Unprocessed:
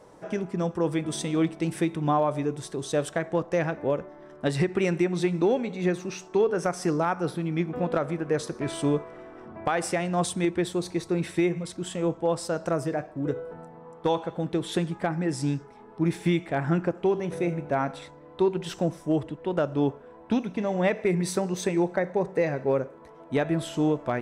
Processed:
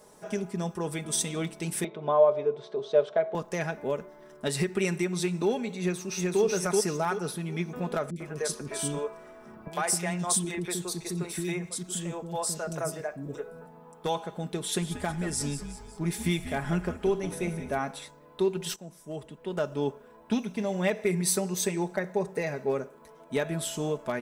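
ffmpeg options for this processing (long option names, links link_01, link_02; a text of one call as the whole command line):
ffmpeg -i in.wav -filter_complex "[0:a]asettb=1/sr,asplit=3[link_01][link_02][link_03];[link_01]atrim=end=1.844[link_04];[link_02]atrim=start=1.84:end=3.35,asetpts=PTS-STARTPTS,afade=type=in:duration=0.004:curve=qsin,afade=type=out:start_time=1.506:duration=0.004:curve=qsin,highpass=170,equalizer=frequency=180:width_type=q:width=4:gain=-8,equalizer=frequency=290:width_type=q:width=4:gain=-7,equalizer=frequency=430:width_type=q:width=4:gain=6,equalizer=frequency=630:width_type=q:width=4:gain=10,equalizer=frequency=1800:width_type=q:width=4:gain=-8,equalizer=frequency=2700:width_type=q:width=4:gain=-7,lowpass=frequency=3300:width=0.5412,lowpass=frequency=3300:width=1.3066[link_05];[link_03]atrim=start=3.346[link_06];[link_04][link_05]acrossfade=duration=0.004:curve1=hsin:curve2=qsin[link_07];[link_07][link_06]acrossfade=duration=0.004:curve1=qsin:curve2=hsin,asplit=2[link_08][link_09];[link_09]afade=type=in:start_time=5.79:duration=0.01,afade=type=out:start_time=6.42:duration=0.01,aecho=0:1:380|760|1140|1520|1900:0.891251|0.311938|0.109178|0.0382124|0.0133743[link_10];[link_08][link_10]amix=inputs=2:normalize=0,asettb=1/sr,asplit=3[link_11][link_12][link_13];[link_11]atrim=end=8.104[link_14];[link_12]atrim=start=8.1:end=13.66,asetpts=PTS-STARTPTS,afade=type=in:duration=0.004:curve=qsin,afade=type=out:start_time=5.556:duration=0.004:curve=qsin,acrossover=split=360|2900[link_15][link_16][link_17];[link_17]adelay=60[link_18];[link_16]adelay=100[link_19];[link_15][link_19][link_18]amix=inputs=3:normalize=0,atrim=end_sample=245196[link_20];[link_13]atrim=start=13.656[link_21];[link_14][link_20]acrossfade=duration=0.004:curve1=hsin:curve2=qsin[link_22];[link_22][link_21]acrossfade=duration=0.004:curve1=qsin:curve2=hsin,asplit=3[link_23][link_24][link_25];[link_23]afade=type=out:start_time=14.81:duration=0.02[link_26];[link_24]asplit=6[link_27][link_28][link_29][link_30][link_31][link_32];[link_28]adelay=183,afreqshift=-94,volume=-11dB[link_33];[link_29]adelay=366,afreqshift=-188,volume=-17dB[link_34];[link_30]adelay=549,afreqshift=-282,volume=-23dB[link_35];[link_31]adelay=732,afreqshift=-376,volume=-29.1dB[link_36];[link_32]adelay=915,afreqshift=-470,volume=-35.1dB[link_37];[link_27][link_33][link_34][link_35][link_36][link_37]amix=inputs=6:normalize=0,afade=type=in:start_time=14.81:duration=0.02,afade=type=out:start_time=17.77:duration=0.02[link_38];[link_25]afade=type=in:start_time=17.77:duration=0.02[link_39];[link_26][link_38][link_39]amix=inputs=3:normalize=0,asplit=2[link_40][link_41];[link_40]atrim=end=18.76,asetpts=PTS-STARTPTS,afade=type=out:start_time=18.756:duration=0.004:curve=hsin:silence=0.125893[link_42];[link_41]atrim=start=18.76,asetpts=PTS-STARTPTS,afade=type=in:duration=0.92:silence=0.125893[link_43];[link_42][link_43]concat=n=2:v=0:a=1,aemphasis=mode=production:type=75fm,aecho=1:1:4.8:0.53,volume=-4.5dB" out.wav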